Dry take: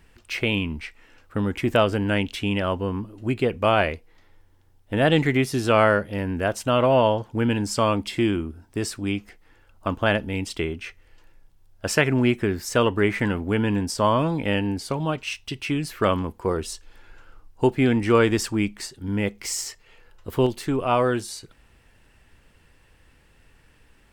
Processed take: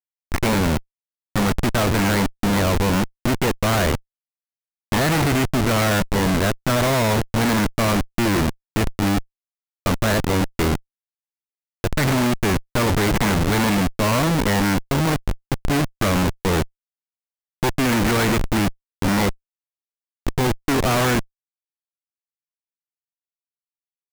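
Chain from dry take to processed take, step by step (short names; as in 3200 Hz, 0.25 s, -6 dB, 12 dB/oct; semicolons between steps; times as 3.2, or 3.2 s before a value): spectral whitening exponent 0.3; steep low-pass 2300 Hz 72 dB/oct; Schmitt trigger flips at -29.5 dBFS; gain +8 dB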